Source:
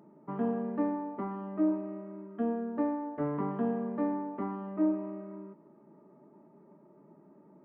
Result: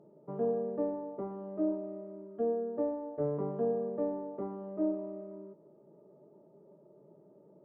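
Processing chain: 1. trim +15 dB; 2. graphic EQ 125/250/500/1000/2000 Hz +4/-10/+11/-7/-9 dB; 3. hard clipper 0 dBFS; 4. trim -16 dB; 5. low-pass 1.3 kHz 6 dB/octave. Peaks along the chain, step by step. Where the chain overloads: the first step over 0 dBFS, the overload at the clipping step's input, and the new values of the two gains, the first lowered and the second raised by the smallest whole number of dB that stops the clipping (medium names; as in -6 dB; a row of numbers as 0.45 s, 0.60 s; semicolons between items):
-3.5 dBFS, -4.0 dBFS, -4.0 dBFS, -20.0 dBFS, -20.5 dBFS; nothing clips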